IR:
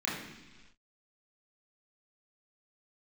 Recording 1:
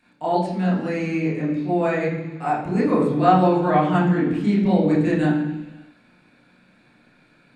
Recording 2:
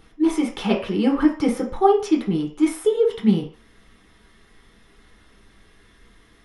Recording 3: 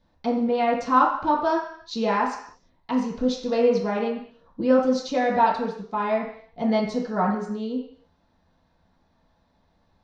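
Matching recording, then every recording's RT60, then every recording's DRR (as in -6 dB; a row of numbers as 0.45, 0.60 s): 1; not exponential, 0.40 s, not exponential; -7.0, -2.5, -6.5 dB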